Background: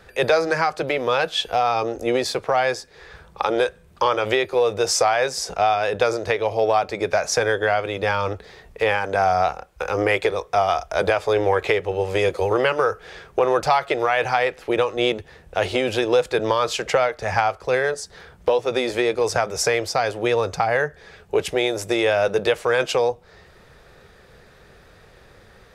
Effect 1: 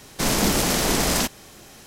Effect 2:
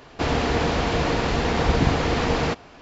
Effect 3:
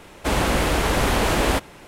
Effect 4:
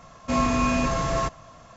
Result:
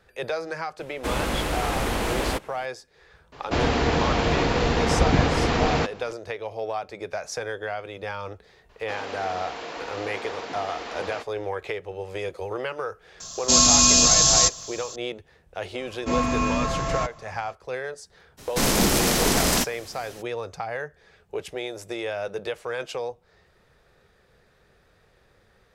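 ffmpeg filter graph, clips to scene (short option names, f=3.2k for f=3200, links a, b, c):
-filter_complex "[2:a]asplit=2[a][b];[4:a]asplit=2[c][d];[0:a]volume=-11dB[e];[b]highpass=430[f];[c]aexciter=amount=12.1:drive=7.3:freq=3.4k[g];[3:a]atrim=end=1.87,asetpts=PTS-STARTPTS,volume=-6dB,afade=t=in:d=0.004:c=hsin,afade=t=out:st=1.866:d=0.004:c=hsin,adelay=790[h];[a]atrim=end=2.81,asetpts=PTS-STARTPTS,afade=t=in:d=0.004:c=hsin,afade=t=out:st=2.806:d=0.004:c=hsin,adelay=3320[i];[f]atrim=end=2.81,asetpts=PTS-STARTPTS,volume=-10dB,afade=t=in:d=0.004:c=hsin,afade=t=out:st=2.806:d=0.004:c=hsin,adelay=8690[j];[g]atrim=end=1.76,asetpts=PTS-STARTPTS,volume=-1.5dB,afade=t=in:d=0.004:c=hsin,afade=t=out:st=1.756:d=0.004:c=hsin,adelay=13200[k];[d]atrim=end=1.76,asetpts=PTS-STARTPTS,volume=-1.5dB,afade=t=in:d=0.004:c=hsin,afade=t=out:st=1.756:d=0.004:c=hsin,adelay=15780[l];[1:a]atrim=end=1.86,asetpts=PTS-STARTPTS,afade=t=in:d=0.02,afade=t=out:st=1.84:d=0.02,adelay=18370[m];[e][h][i][j][k][l][m]amix=inputs=7:normalize=0"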